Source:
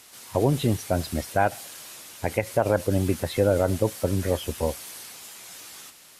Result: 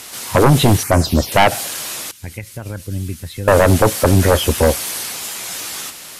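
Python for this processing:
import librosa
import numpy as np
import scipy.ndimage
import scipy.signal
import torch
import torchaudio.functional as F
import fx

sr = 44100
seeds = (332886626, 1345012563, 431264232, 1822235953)

y = fx.env_phaser(x, sr, low_hz=490.0, high_hz=3700.0, full_db=-20.0, at=(0.83, 1.32))
y = fx.tone_stack(y, sr, knobs='6-0-2', at=(2.11, 3.48))
y = fx.fold_sine(y, sr, drive_db=10, ceiling_db=-7.5)
y = y * 10.0 ** (2.0 / 20.0)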